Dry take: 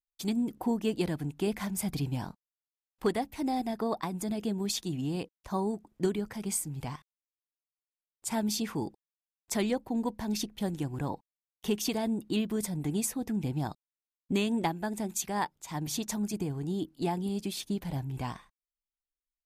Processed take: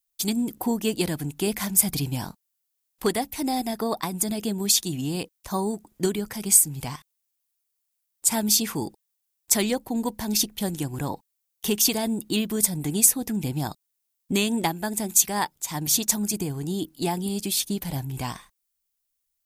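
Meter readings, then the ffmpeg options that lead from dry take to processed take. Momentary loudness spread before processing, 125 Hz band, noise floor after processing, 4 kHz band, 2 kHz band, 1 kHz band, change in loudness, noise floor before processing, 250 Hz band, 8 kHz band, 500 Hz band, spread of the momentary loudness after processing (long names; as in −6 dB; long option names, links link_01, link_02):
7 LU, +4.0 dB, −78 dBFS, +11.0 dB, +7.0 dB, +4.5 dB, +8.5 dB, below −85 dBFS, +4.0 dB, +15.5 dB, +4.0 dB, 12 LU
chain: -af "crystalizer=i=3:c=0,volume=4dB"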